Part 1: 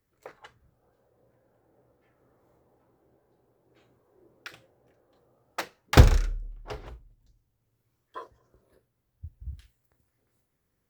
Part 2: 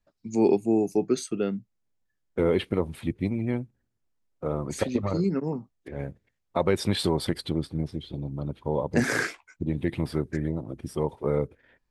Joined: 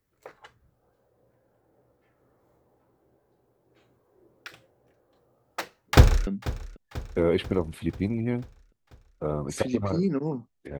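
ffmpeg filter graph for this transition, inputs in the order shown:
ffmpeg -i cue0.wav -i cue1.wav -filter_complex "[0:a]apad=whole_dur=10.79,atrim=end=10.79,atrim=end=6.272[link_01];[1:a]atrim=start=1.478:end=6[link_02];[link_01][link_02]acrossfade=duration=0.004:curve1=hsin:curve2=hsin,asplit=2[link_03][link_04];[link_04]afade=type=in:start_time=5.93:duration=0.01,afade=type=out:start_time=6.27:duration=0.01,aecho=0:1:490|980|1470|1960|2450|2940:0.141254|0.0847523|0.0508514|0.0305108|0.0183065|0.0109839[link_05];[link_03][link_05]amix=inputs=2:normalize=0" out.wav

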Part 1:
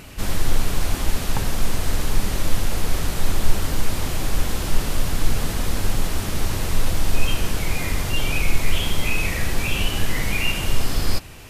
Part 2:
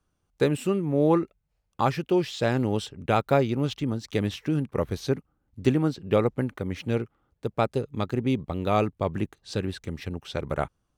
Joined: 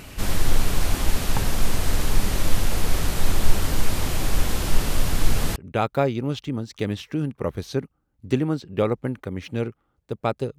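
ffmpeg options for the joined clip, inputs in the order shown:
ffmpeg -i cue0.wav -i cue1.wav -filter_complex "[0:a]apad=whole_dur=10.58,atrim=end=10.58,atrim=end=5.562[link_01];[1:a]atrim=start=2.898:end=7.92[link_02];[link_01][link_02]acrossfade=duration=0.004:curve1=hsin:curve2=hsin" out.wav

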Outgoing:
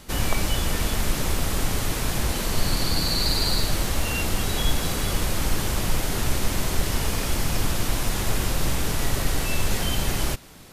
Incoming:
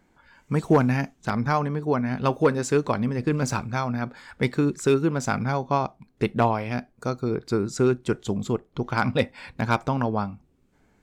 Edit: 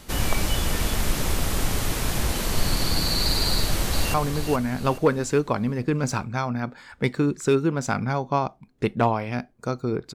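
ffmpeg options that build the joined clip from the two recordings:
ffmpeg -i cue0.wav -i cue1.wav -filter_complex "[0:a]apad=whole_dur=10.14,atrim=end=10.14,atrim=end=4.142[link_01];[1:a]atrim=start=1.528:end=7.53[link_02];[link_01][link_02]acrossfade=duration=0.004:curve1=hsin:curve2=hsin,asplit=2[link_03][link_04];[link_04]afade=type=in:start_time=3.5:duration=0.01,afade=type=out:start_time=4.14:duration=0.01,aecho=0:1:420|840|1260|1680|2100:0.446684|0.178673|0.0714694|0.0285877|0.0114351[link_05];[link_03][link_05]amix=inputs=2:normalize=0" out.wav

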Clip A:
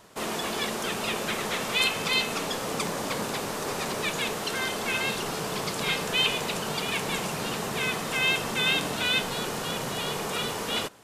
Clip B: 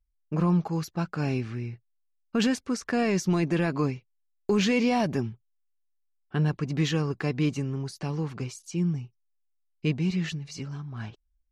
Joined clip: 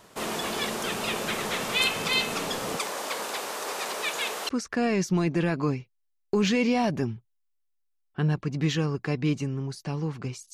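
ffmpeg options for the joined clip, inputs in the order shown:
ffmpeg -i cue0.wav -i cue1.wav -filter_complex "[0:a]asettb=1/sr,asplit=3[link_01][link_02][link_03];[link_01]atrim=end=2.774[link_04];[link_02]atrim=start=2.77:end=4.49,asetpts=PTS-STARTPTS,afade=type=in:duration=0.004:curve=qsin,afade=type=out:start_time=1.716:duration=0.004:curve=qsin,highpass=480[link_05];[link_03]atrim=start=4.486[link_06];[link_04][link_05]acrossfade=duration=0.004:curve1=hsin:curve2=qsin[link_07];[link_07][link_06]acrossfade=duration=0.004:curve1=qsin:curve2=hsin,apad=whole_dur=10.53,atrim=end=10.53,atrim=end=4.492[link_08];[1:a]atrim=start=2.648:end=8.69[link_09];[link_08][link_09]acrossfade=duration=0.004:curve1=hsin:curve2=hsin" out.wav

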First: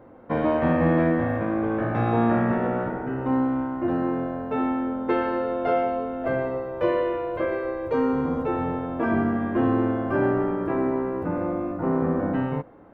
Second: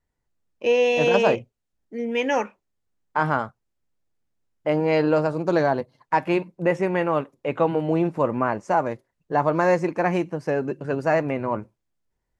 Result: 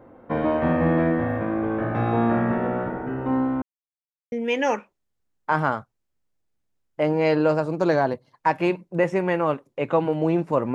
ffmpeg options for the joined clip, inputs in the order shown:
ffmpeg -i cue0.wav -i cue1.wav -filter_complex "[0:a]apad=whole_dur=10.74,atrim=end=10.74,asplit=2[link_01][link_02];[link_01]atrim=end=3.62,asetpts=PTS-STARTPTS,afade=type=out:start_time=3.616:duration=0.004:curve=hsin[link_03];[link_02]atrim=start=3.62:end=4.32,asetpts=PTS-STARTPTS,volume=0[link_04];[1:a]atrim=start=1.99:end=8.41,asetpts=PTS-STARTPTS,afade=type=in:duration=0.004:curve=hsin[link_05];[link_03][link_04][link_05]concat=n=3:v=0:a=1" out.wav

